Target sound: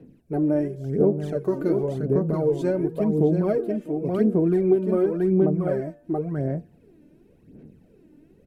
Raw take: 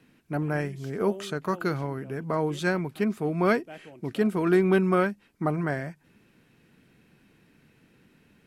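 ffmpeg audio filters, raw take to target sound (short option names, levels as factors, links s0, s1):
-filter_complex "[0:a]bandreject=f=116.8:t=h:w=4,bandreject=f=233.6:t=h:w=4,bandreject=f=350.4:t=h:w=4,bandreject=f=467.2:t=h:w=4,bandreject=f=584:t=h:w=4,bandreject=f=700.8:t=h:w=4,bandreject=f=817.6:t=h:w=4,bandreject=f=934.4:t=h:w=4,bandreject=f=1051.2:t=h:w=4,bandreject=f=1168:t=h:w=4,bandreject=f=1284.8:t=h:w=4,bandreject=f=1401.6:t=h:w=4,bandreject=f=1518.4:t=h:w=4,bandreject=f=1635.2:t=h:w=4,bandreject=f=1752:t=h:w=4,asplit=2[s0][s1];[s1]aecho=0:1:680:0.596[s2];[s0][s2]amix=inputs=2:normalize=0,aphaser=in_gain=1:out_gain=1:delay=3.4:decay=0.64:speed=0.92:type=sinusoidal,equalizer=f=3300:t=o:w=1.8:g=-5,acompressor=threshold=0.0794:ratio=6,lowshelf=f=770:t=q:w=1.5:g=12.5,volume=0.376"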